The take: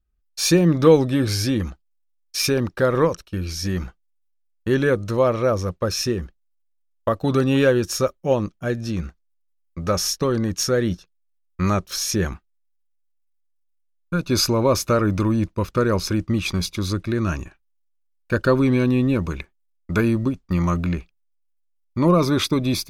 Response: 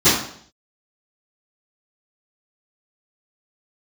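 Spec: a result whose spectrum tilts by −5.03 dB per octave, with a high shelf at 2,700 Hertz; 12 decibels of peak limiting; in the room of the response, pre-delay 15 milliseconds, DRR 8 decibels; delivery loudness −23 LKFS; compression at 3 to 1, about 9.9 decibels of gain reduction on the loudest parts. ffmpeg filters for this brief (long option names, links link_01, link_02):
-filter_complex "[0:a]highshelf=frequency=2700:gain=4.5,acompressor=threshold=-21dB:ratio=3,alimiter=limit=-21dB:level=0:latency=1,asplit=2[link_01][link_02];[1:a]atrim=start_sample=2205,adelay=15[link_03];[link_02][link_03]afir=irnorm=-1:irlink=0,volume=-31dB[link_04];[link_01][link_04]amix=inputs=2:normalize=0,volume=5.5dB"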